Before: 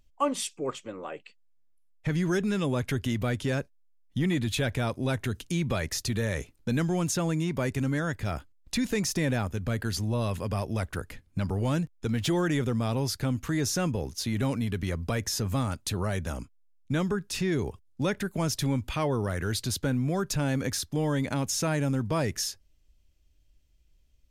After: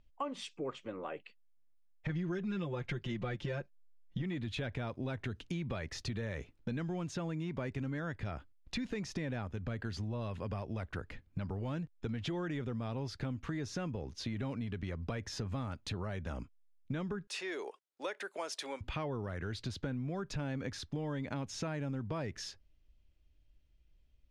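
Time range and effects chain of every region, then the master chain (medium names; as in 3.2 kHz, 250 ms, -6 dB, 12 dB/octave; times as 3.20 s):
2.09–4.22 s: low-pass 8.2 kHz + comb 5.7 ms, depth 100%
17.27–18.81 s: high-pass 440 Hz 24 dB/octave + peaking EQ 9.5 kHz +10.5 dB 0.84 oct
whole clip: low-pass 3.6 kHz 12 dB/octave; compression, threshold -32 dBFS; trim -3 dB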